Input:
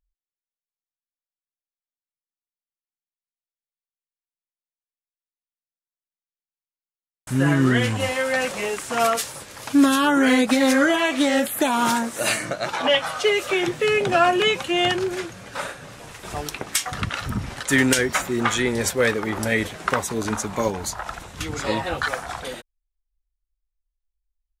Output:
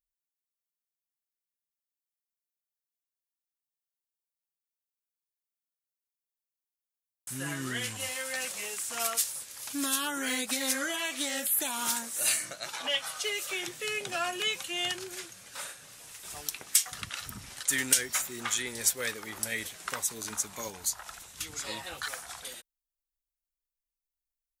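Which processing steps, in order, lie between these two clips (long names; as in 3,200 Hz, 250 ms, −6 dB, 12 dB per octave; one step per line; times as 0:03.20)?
first-order pre-emphasis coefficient 0.9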